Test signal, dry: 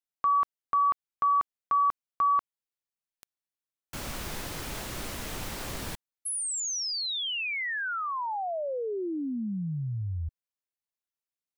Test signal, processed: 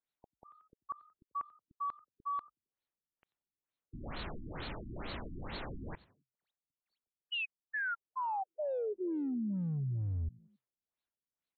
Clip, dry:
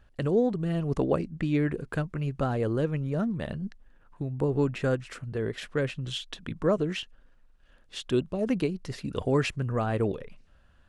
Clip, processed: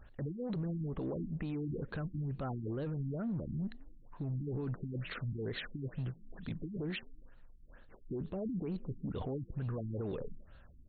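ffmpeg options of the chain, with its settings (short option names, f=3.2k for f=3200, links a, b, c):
-filter_complex "[0:a]acompressor=threshold=-32dB:ratio=12:attack=0.4:release=22:knee=1:detection=peak,alimiter=level_in=11dB:limit=-24dB:level=0:latency=1:release=29,volume=-11dB,aexciter=amount=2.8:drive=6:freq=4.1k,asplit=2[a][b];[b]asplit=3[c][d][e];[c]adelay=89,afreqshift=42,volume=-23.5dB[f];[d]adelay=178,afreqshift=84,volume=-29dB[g];[e]adelay=267,afreqshift=126,volume=-34.5dB[h];[f][g][h]amix=inputs=3:normalize=0[i];[a][i]amix=inputs=2:normalize=0,afftfilt=real='re*lt(b*sr/1024,330*pow(4500/330,0.5+0.5*sin(2*PI*2.2*pts/sr)))':imag='im*lt(b*sr/1024,330*pow(4500/330,0.5+0.5*sin(2*PI*2.2*pts/sr)))':win_size=1024:overlap=0.75,volume=3dB"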